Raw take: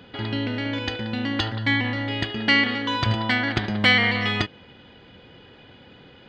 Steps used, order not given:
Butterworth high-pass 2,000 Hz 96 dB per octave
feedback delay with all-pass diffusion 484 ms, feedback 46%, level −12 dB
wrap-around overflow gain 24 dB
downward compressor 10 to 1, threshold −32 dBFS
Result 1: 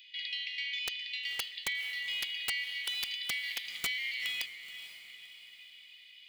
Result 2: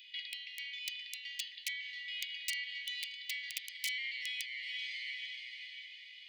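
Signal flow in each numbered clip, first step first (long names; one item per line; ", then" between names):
Butterworth high-pass, then downward compressor, then wrap-around overflow, then feedback delay with all-pass diffusion
feedback delay with all-pass diffusion, then downward compressor, then wrap-around overflow, then Butterworth high-pass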